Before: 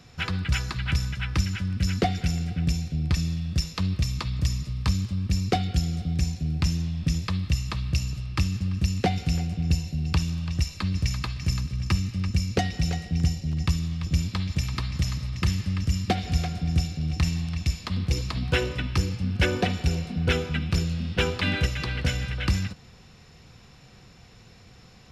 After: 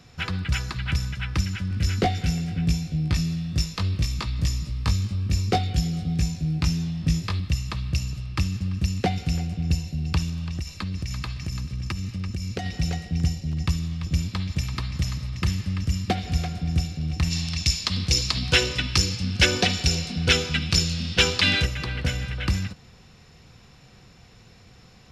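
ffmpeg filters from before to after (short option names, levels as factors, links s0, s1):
-filter_complex "[0:a]asettb=1/sr,asplit=3[s0][s1][s2];[s0]atrim=end=1.694[s3];[s1]atrim=start=1.69:end=7.4,asetpts=PTS-STARTPTS,afade=t=in:d=0.004:c=qsin,afade=t=out:st=5.706:d=0.004:c=qsin,asplit=2[s4][s5];[s5]adelay=19,volume=0.708[s6];[s4][s6]amix=inputs=2:normalize=0,atrim=end_sample=251811[s7];[s2]atrim=start=7.396[s8];[s3][s7]acrossfade=d=0.004:c1=hsin:c2=qsin[s9];[s9][s8]acrossfade=d=0.004:c1=qsin:c2=hsin,asettb=1/sr,asplit=3[s10][s11][s12];[s10]atrim=end=10.294[s13];[s11]atrim=start=10.29:end=12.66,asetpts=PTS-STARTPTS,afade=t=in:d=0.004:c=qsin,afade=t=out:st=2.366:d=0.004:c=qsin,acompressor=threshold=0.0562:ratio=6:attack=3.2:release=140:knee=1:detection=peak[s14];[s12]atrim=start=12.656[s15];[s13][s14]acrossfade=d=0.004:c1=hsin:c2=qsin[s16];[s16][s15]acrossfade=d=0.004:c1=qsin:c2=hsin,asplit=3[s17][s18][s19];[s17]afade=t=out:st=17.3:d=0.02[s20];[s18]equalizer=f=5500:w=0.53:g=14.5,afade=t=in:st=17.3:d=0.02,afade=t=out:st=21.62:d=0.02[s21];[s19]afade=t=in:st=21.62:d=0.02[s22];[s20][s21][s22]amix=inputs=3:normalize=0"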